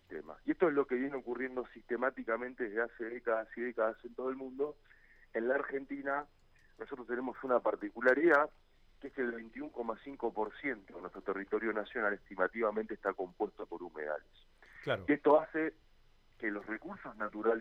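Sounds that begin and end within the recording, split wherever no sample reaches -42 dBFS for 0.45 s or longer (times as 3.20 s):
5.35–6.22 s
6.81–8.46 s
9.04–14.17 s
14.82–15.69 s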